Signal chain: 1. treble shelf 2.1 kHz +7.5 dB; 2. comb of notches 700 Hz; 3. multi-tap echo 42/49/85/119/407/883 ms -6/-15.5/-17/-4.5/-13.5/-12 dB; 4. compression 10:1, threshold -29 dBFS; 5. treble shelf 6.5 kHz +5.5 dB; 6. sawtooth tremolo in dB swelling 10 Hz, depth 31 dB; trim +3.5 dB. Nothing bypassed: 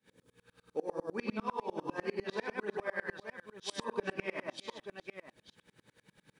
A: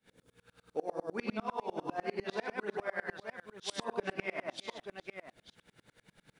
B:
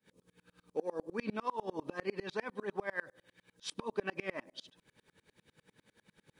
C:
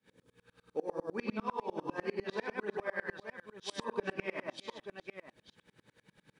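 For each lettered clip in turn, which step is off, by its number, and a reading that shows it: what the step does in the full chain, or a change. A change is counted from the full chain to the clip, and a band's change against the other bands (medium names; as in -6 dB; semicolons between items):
2, momentary loudness spread change -1 LU; 3, momentary loudness spread change -2 LU; 5, 8 kHz band -2.5 dB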